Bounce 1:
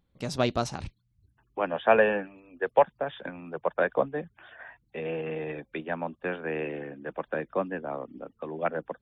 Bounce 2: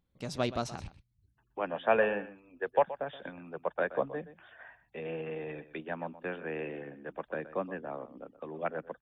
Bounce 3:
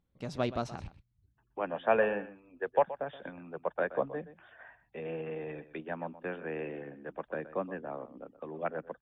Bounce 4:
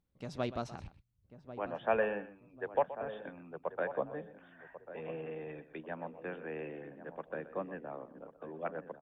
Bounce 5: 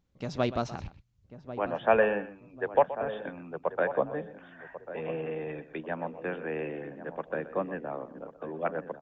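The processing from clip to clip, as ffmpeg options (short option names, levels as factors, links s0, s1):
-af "aecho=1:1:124:0.178,volume=0.531"
-af "highshelf=f=4100:g=-10.5"
-filter_complex "[0:a]asplit=2[s0][s1];[s1]adelay=1092,lowpass=f=970:p=1,volume=0.266,asplit=2[s2][s3];[s3]adelay=1092,lowpass=f=970:p=1,volume=0.41,asplit=2[s4][s5];[s5]adelay=1092,lowpass=f=970:p=1,volume=0.41,asplit=2[s6][s7];[s7]adelay=1092,lowpass=f=970:p=1,volume=0.41[s8];[s0][s2][s4][s6][s8]amix=inputs=5:normalize=0,volume=0.631"
-af "aresample=16000,aresample=44100,volume=2.37"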